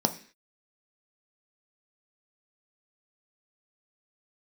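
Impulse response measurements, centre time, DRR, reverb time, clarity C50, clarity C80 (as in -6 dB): 7 ms, 6.5 dB, 0.45 s, 14.5 dB, 19.0 dB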